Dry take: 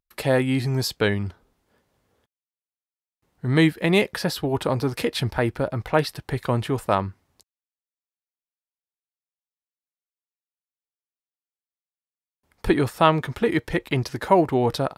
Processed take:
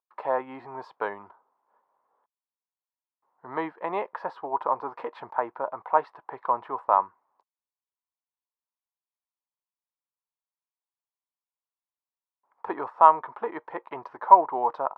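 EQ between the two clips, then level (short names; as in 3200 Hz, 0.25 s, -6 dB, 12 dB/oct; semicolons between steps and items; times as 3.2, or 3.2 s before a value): HPF 630 Hz 12 dB/oct; synth low-pass 1000 Hz, resonance Q 4.9; -5.0 dB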